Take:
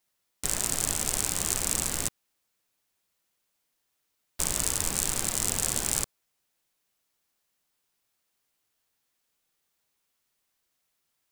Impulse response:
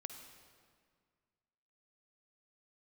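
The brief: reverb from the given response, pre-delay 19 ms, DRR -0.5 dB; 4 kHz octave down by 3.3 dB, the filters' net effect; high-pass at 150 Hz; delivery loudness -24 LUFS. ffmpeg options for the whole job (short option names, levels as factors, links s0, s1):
-filter_complex "[0:a]highpass=150,equalizer=f=4000:t=o:g=-4.5,asplit=2[s0][s1];[1:a]atrim=start_sample=2205,adelay=19[s2];[s1][s2]afir=irnorm=-1:irlink=0,volume=1.58[s3];[s0][s3]amix=inputs=2:normalize=0,volume=1.12"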